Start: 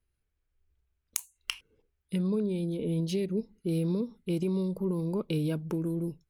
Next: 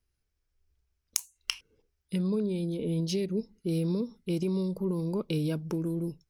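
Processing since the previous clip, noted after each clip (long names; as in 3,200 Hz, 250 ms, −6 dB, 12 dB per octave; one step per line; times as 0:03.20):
parametric band 5,400 Hz +9 dB 0.52 octaves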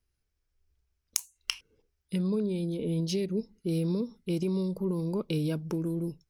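no processing that can be heard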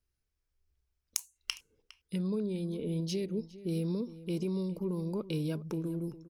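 slap from a distant wall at 70 metres, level −16 dB
level −4 dB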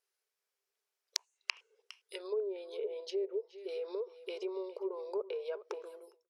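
fade-out on the ending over 0.52 s
linear-phase brick-wall high-pass 370 Hz
treble cut that deepens with the level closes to 770 Hz, closed at −35 dBFS
level +3.5 dB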